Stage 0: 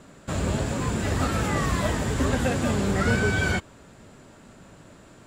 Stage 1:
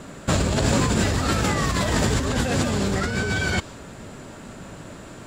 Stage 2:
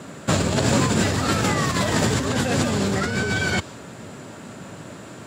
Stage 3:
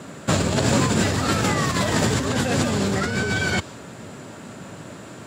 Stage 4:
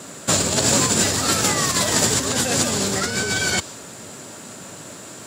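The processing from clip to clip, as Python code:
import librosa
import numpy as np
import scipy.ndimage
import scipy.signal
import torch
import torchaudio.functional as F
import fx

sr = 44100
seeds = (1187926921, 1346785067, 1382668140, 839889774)

y1 = fx.dynamic_eq(x, sr, hz=4800.0, q=1.2, threshold_db=-50.0, ratio=4.0, max_db=6)
y1 = fx.over_compress(y1, sr, threshold_db=-28.0, ratio=-1.0)
y1 = y1 * 10.0 ** (6.0 / 20.0)
y2 = scipy.signal.sosfilt(scipy.signal.butter(4, 90.0, 'highpass', fs=sr, output='sos'), y1)
y2 = y2 * 10.0 ** (1.5 / 20.0)
y3 = y2
y4 = fx.bass_treble(y3, sr, bass_db=-5, treble_db=12)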